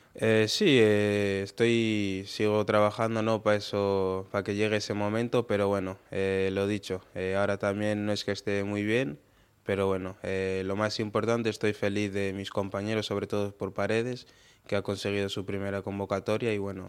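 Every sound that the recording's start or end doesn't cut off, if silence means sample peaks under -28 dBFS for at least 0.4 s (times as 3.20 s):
9.69–14.14 s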